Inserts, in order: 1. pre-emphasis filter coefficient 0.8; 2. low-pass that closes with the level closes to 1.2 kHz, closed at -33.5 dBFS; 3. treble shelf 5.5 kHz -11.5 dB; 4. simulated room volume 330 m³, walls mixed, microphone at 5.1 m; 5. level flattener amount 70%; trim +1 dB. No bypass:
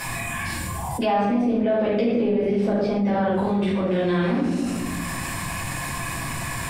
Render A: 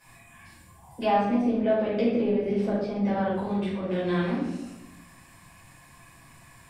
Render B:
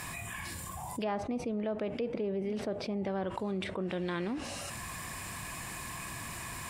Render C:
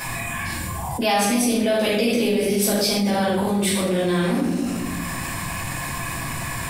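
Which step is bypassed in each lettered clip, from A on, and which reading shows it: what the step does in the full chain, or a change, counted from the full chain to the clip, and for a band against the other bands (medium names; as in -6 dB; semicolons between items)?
5, crest factor change +3.5 dB; 4, momentary loudness spread change -2 LU; 2, 4 kHz band +9.0 dB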